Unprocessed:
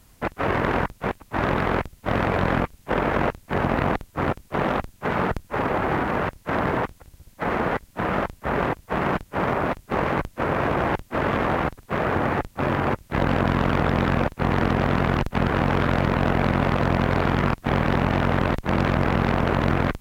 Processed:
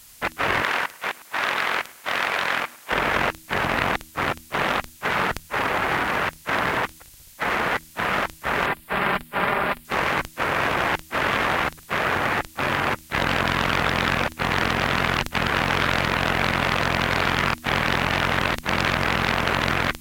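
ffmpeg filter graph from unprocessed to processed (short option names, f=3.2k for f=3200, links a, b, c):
-filter_complex "[0:a]asettb=1/sr,asplit=3[a][b][c];[a]atrim=end=0.624[d];[b]atrim=start=0.62:end=2.92,asetpts=PTS-STARTPTS,afade=t=in:d=0.004:c=qsin,afade=t=out:st=2.296:d=0.004:c=qsin,highpass=f=720:p=1,aecho=1:1:106|212|318:0.075|0.0367|0.018,atrim=end_sample=101430[e];[c]atrim=start=2.916[f];[d][e]acrossfade=d=0.004:c1=hsin:c2=qsin[g];[g][f]acrossfade=d=0.004:c1=qsin:c2=hsin,asettb=1/sr,asplit=3[h][i][j];[h]atrim=end=8.664[k];[i]atrim=start=8.66:end=9.85,asetpts=PTS-STARTPTS,afade=t=in:d=0.004:c=qsin,afade=t=out:st=1.186:d=0.004:c=qsin,equalizer=f=6.2k:w=1.9:g=-14.5,aecho=1:1:5:0.43,atrim=end_sample=52479[l];[j]atrim=start=9.846[m];[k][l]acrossfade=d=0.004:c1=hsin:c2=qsin[n];[n][m]acrossfade=d=0.004:c1=qsin:c2=hsin,tiltshelf=f=1.3k:g=-9.5,bandreject=f=79.96:t=h:w=4,bandreject=f=159.92:t=h:w=4,bandreject=f=239.88:t=h:w=4,bandreject=f=319.84:t=h:w=4,volume=3.5dB"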